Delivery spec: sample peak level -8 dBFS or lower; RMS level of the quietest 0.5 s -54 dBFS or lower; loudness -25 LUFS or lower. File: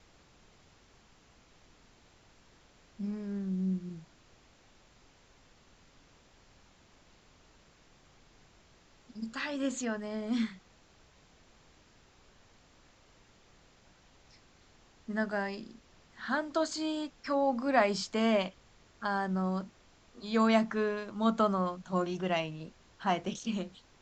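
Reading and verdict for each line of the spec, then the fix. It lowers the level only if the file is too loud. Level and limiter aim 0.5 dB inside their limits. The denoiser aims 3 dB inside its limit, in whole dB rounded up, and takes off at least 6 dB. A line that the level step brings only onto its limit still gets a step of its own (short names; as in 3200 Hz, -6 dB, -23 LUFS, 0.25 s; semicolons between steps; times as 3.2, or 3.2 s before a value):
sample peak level -12.0 dBFS: OK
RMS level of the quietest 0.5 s -62 dBFS: OK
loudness -32.5 LUFS: OK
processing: none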